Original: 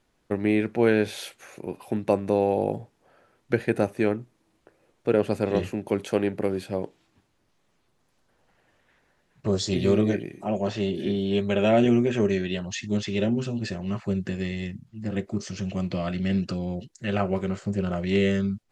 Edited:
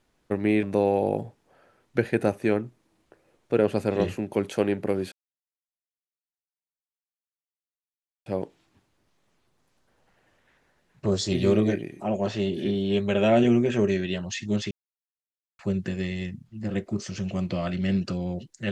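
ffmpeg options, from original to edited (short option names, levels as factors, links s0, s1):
-filter_complex "[0:a]asplit=5[s0][s1][s2][s3][s4];[s0]atrim=end=0.632[s5];[s1]atrim=start=2.178:end=6.67,asetpts=PTS-STARTPTS,afade=t=out:st=4.488:d=0.004:c=hsin,apad=pad_dur=3.14[s6];[s2]atrim=start=6.67:end=13.12,asetpts=PTS-STARTPTS,afade=t=in:d=0.004:c=hsin,afade=t=out:st=6.446:d=0.004:c=hsin[s7];[s3]atrim=start=13.12:end=14,asetpts=PTS-STARTPTS,volume=0[s8];[s4]atrim=start=14,asetpts=PTS-STARTPTS,afade=t=in:d=0.004:c=hsin[s9];[s6][s7][s8][s9]concat=n=4:v=0:a=1[s10];[s5][s10]acrossfade=d=0.004:c1=hsin:c2=hsin"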